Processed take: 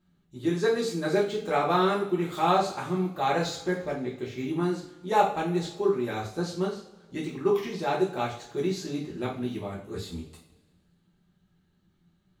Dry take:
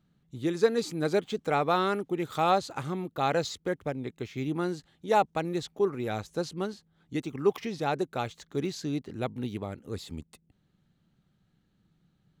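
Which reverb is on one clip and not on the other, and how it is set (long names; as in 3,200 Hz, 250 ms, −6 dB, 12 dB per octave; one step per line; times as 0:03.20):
coupled-rooms reverb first 0.41 s, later 1.7 s, from −19 dB, DRR −5.5 dB
level −4.5 dB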